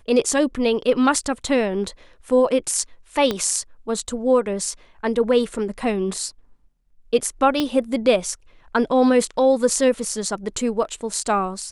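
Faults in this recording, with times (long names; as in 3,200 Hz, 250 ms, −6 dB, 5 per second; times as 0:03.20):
0:03.31: click −9 dBFS
0:07.60: click −8 dBFS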